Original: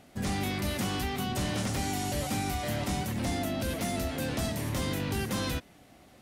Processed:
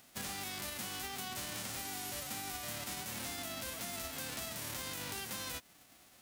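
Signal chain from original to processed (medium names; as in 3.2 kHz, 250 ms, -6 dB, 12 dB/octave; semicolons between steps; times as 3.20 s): formants flattened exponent 0.3; compression, threshold -33 dBFS, peak gain reduction 6.5 dB; trim -5.5 dB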